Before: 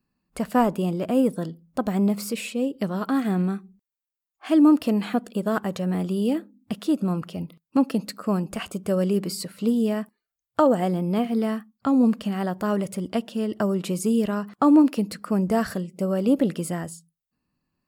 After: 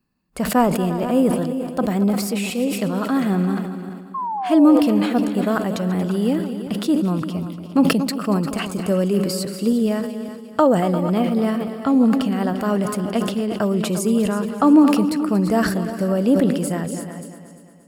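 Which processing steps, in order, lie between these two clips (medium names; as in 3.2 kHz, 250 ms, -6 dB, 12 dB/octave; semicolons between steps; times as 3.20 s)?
chunks repeated in reverse 278 ms, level -13 dB; painted sound fall, 4.14–4.80 s, 490–1100 Hz -28 dBFS; on a send: multi-head delay 116 ms, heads second and third, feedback 43%, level -14 dB; on the sum: decay stretcher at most 54 dB/s; trim +3 dB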